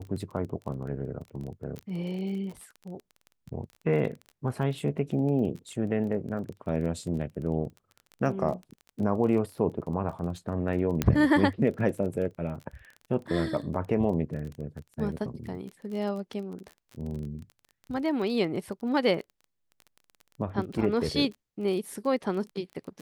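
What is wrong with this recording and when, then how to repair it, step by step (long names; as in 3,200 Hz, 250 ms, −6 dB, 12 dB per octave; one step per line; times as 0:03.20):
surface crackle 21 per second −36 dBFS
0:01.79: click −24 dBFS
0:11.02: click −10 dBFS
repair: click removal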